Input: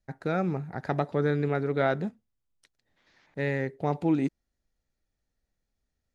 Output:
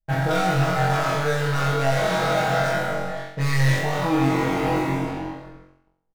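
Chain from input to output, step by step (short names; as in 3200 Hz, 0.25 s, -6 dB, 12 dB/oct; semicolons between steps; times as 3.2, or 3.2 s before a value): spectral trails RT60 1.99 s; notches 60/120/180/240/300/360/420/480/540 Hz; reverse; compressor 8:1, threshold -37 dBFS, peak gain reduction 18.5 dB; reverse; bell 280 Hz -14 dB 1.6 oct; low-pass opened by the level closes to 720 Hz, open at -39.5 dBFS; sample leveller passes 5; comb 6.3 ms, depth 98%; on a send: flutter echo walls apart 3.8 m, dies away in 0.62 s; on the sum: dynamic EQ 2700 Hz, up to -4 dB, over -43 dBFS, Q 0.9; gain +7 dB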